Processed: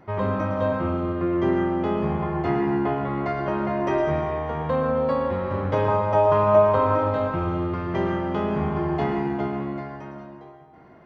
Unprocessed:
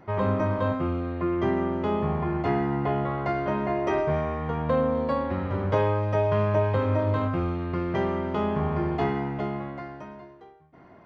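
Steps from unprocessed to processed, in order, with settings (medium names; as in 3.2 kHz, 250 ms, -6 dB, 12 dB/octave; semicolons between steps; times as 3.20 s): 5.88–6.95 s: high-order bell 920 Hz +8.5 dB 1.2 oct; reverberation RT60 1.7 s, pre-delay 98 ms, DRR 4 dB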